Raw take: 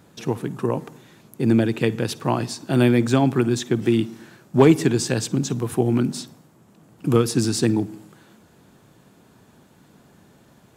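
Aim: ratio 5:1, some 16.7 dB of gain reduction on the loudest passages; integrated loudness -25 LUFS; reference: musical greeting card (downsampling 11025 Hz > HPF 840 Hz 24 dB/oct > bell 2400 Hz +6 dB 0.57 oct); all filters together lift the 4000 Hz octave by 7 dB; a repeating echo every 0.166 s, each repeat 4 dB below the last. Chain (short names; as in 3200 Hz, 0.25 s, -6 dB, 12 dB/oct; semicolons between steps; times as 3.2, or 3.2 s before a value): bell 4000 Hz +7.5 dB; compressor 5:1, threshold -28 dBFS; feedback echo 0.166 s, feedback 63%, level -4 dB; downsampling 11025 Hz; HPF 840 Hz 24 dB/oct; bell 2400 Hz +6 dB 0.57 oct; gain +11.5 dB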